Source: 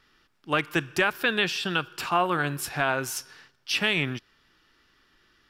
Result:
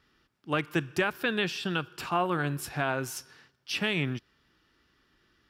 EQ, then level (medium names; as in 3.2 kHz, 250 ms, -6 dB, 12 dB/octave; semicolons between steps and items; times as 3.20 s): high-pass 40 Hz; bass shelf 480 Hz +7 dB; -6.0 dB